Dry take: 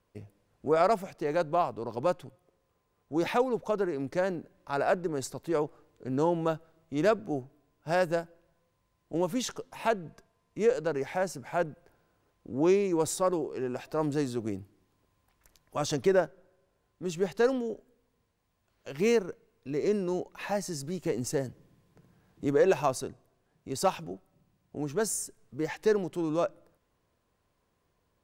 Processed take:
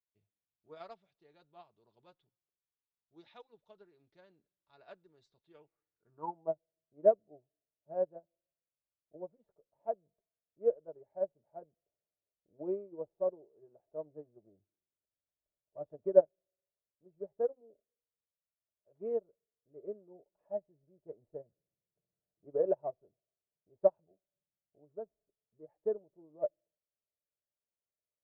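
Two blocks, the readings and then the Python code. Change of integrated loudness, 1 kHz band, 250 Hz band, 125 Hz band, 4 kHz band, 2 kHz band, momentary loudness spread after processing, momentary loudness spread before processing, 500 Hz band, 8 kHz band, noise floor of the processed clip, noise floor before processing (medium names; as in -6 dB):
-5.5 dB, -14.5 dB, -18.5 dB, under -20 dB, under -25 dB, under -25 dB, 22 LU, 14 LU, -6.5 dB, under -40 dB, under -85 dBFS, -75 dBFS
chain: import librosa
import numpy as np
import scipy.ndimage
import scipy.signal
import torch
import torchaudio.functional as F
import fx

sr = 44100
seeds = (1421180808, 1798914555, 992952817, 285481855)

y = scipy.signal.sosfilt(scipy.signal.cheby1(2, 1.0, 7600.0, 'lowpass', fs=sr, output='sos'), x)
y = fx.notch_comb(y, sr, f0_hz=260.0)
y = fx.filter_sweep_lowpass(y, sr, from_hz=3700.0, to_hz=590.0, start_s=5.45, end_s=6.57, q=4.6)
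y = fx.upward_expand(y, sr, threshold_db=-30.0, expansion=2.5)
y = F.gain(torch.from_numpy(y), -4.5).numpy()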